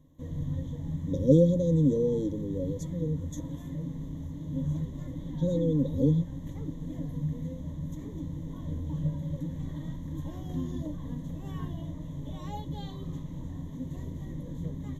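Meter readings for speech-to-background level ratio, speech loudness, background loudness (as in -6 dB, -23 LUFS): 10.0 dB, -27.0 LUFS, -37.0 LUFS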